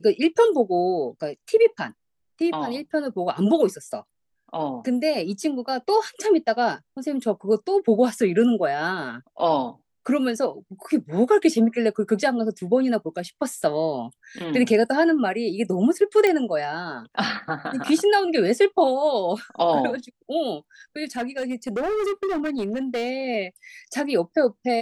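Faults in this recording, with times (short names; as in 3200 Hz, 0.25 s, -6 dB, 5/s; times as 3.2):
16.27 pop -9 dBFS
21.17–23.11 clipped -22 dBFS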